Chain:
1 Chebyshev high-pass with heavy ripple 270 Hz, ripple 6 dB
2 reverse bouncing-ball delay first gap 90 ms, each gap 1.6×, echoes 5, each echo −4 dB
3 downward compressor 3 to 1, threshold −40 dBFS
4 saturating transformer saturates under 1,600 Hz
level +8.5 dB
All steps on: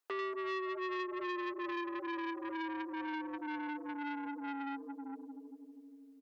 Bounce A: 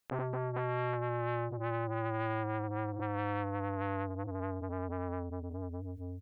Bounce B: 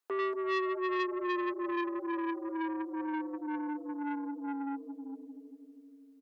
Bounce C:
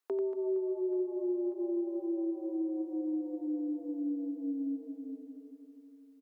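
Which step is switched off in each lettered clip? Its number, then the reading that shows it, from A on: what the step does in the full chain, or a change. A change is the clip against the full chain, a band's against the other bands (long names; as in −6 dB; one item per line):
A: 1, 4 kHz band −9.5 dB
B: 3, average gain reduction 2.0 dB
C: 4, change in crest factor −5.5 dB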